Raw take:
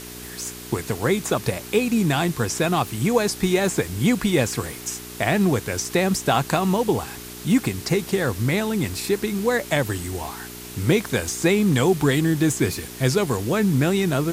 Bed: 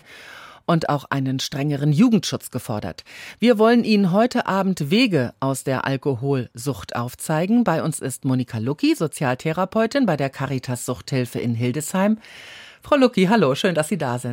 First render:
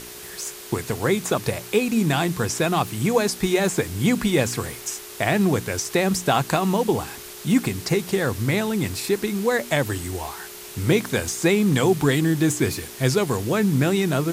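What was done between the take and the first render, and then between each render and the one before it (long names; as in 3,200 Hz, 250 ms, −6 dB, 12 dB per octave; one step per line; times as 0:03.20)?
hum removal 60 Hz, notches 5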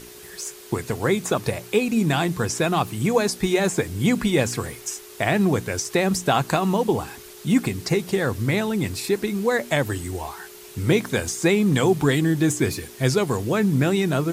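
broadband denoise 6 dB, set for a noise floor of −39 dBFS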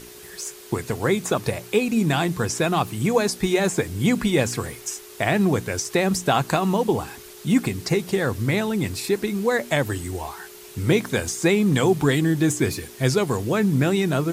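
no processing that can be heard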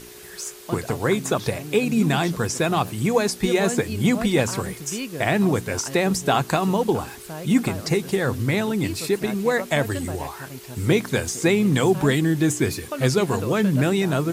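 mix in bed −14 dB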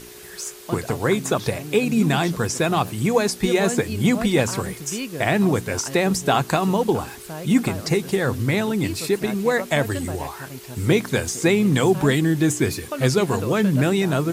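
level +1 dB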